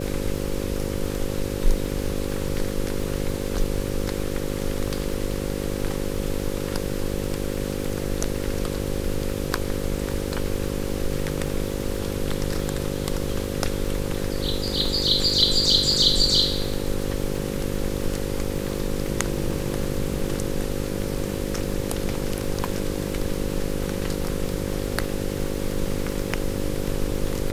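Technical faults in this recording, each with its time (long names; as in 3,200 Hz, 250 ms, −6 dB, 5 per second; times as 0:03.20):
mains buzz 50 Hz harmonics 11 −29 dBFS
surface crackle 130 per second −33 dBFS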